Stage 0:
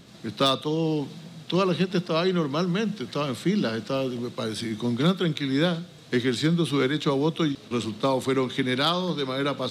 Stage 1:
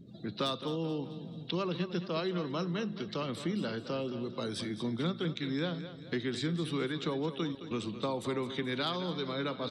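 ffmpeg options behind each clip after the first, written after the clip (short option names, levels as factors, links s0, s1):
-filter_complex "[0:a]afftdn=nr=27:nf=-47,acompressor=threshold=0.0112:ratio=2,asplit=2[s0][s1];[s1]aecho=0:1:216|432|648|864:0.251|0.105|0.0443|0.0186[s2];[s0][s2]amix=inputs=2:normalize=0"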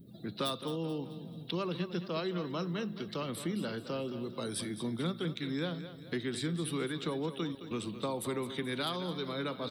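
-af "aexciter=amount=9.7:drive=3.5:freq=9100,volume=0.841"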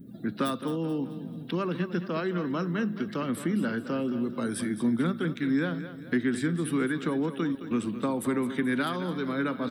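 -af "equalizer=f=250:t=o:w=0.67:g=10,equalizer=f=1600:t=o:w=0.67:g=9,equalizer=f=4000:t=o:w=0.67:g=-9,volume=1.33"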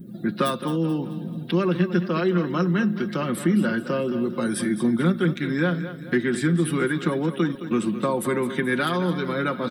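-af "aecho=1:1:5.6:0.58,volume=1.78"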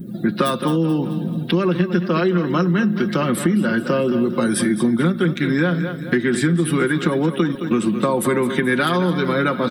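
-af "acompressor=threshold=0.0794:ratio=6,volume=2.51"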